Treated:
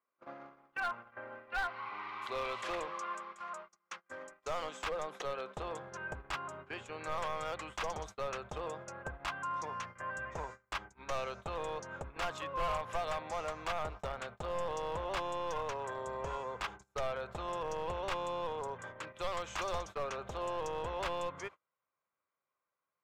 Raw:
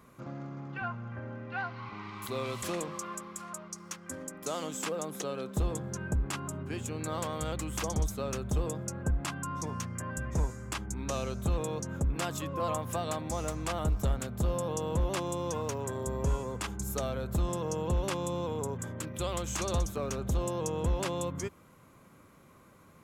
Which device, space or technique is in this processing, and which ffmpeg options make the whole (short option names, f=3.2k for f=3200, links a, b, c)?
walkie-talkie: -af "highpass=570,lowpass=2.9k,asoftclip=type=hard:threshold=-33.5dB,agate=range=-30dB:threshold=-49dB:ratio=16:detection=peak,asubboost=boost=11:cutoff=74,volume=3dB"